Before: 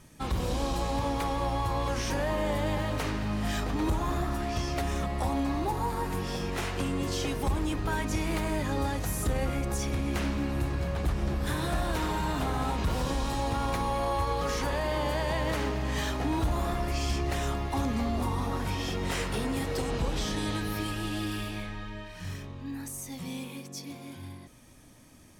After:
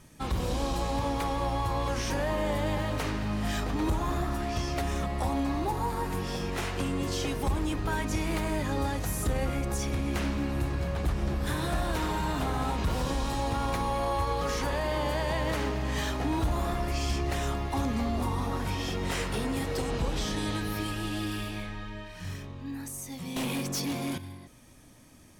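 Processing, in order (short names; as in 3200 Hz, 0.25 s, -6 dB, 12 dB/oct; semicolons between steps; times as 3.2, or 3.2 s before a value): 23.36–24.18 sine folder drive 9 dB, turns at -27.5 dBFS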